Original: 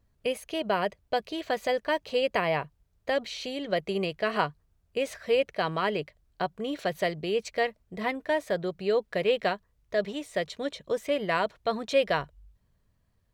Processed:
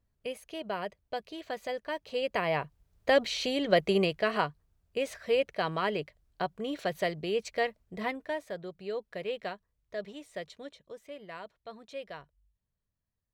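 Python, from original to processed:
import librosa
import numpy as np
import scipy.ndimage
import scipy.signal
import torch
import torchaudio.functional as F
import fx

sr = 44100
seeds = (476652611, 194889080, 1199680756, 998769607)

y = fx.gain(x, sr, db=fx.line((1.94, -8.0), (3.15, 4.0), (3.94, 4.0), (4.41, -2.5), (8.01, -2.5), (8.5, -10.0), (10.51, -10.0), (10.95, -17.0)))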